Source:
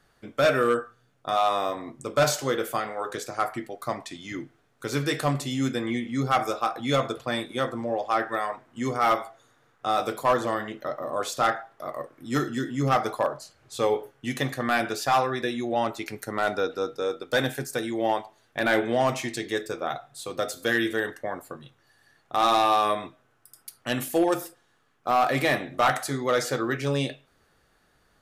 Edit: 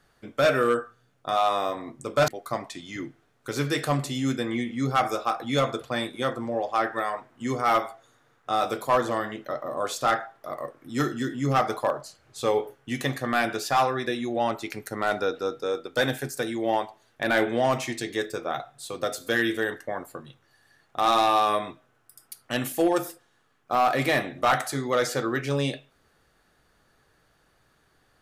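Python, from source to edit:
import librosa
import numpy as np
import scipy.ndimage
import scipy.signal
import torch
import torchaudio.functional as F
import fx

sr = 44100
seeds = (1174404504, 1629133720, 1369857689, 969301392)

y = fx.edit(x, sr, fx.cut(start_s=2.28, length_s=1.36), tone=tone)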